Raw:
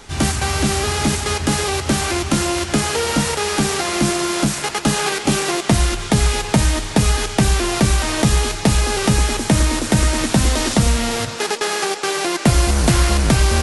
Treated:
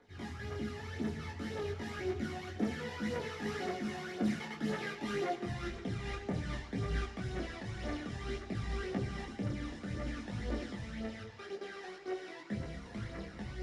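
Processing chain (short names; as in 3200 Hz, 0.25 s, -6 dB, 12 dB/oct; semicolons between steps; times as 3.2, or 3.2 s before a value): Doppler pass-by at 5.52, 18 m/s, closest 12 m; high shelf 3200 Hz -9.5 dB; notches 50/100/150 Hz; reverse; compressor 12:1, threshold -30 dBFS, peak gain reduction 20 dB; reverse; phaser 1.9 Hz, delay 1.2 ms, feedback 61%; reverb RT60 0.85 s, pre-delay 3 ms, DRR 8.5 dB; detuned doubles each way 20 cents; gain -8.5 dB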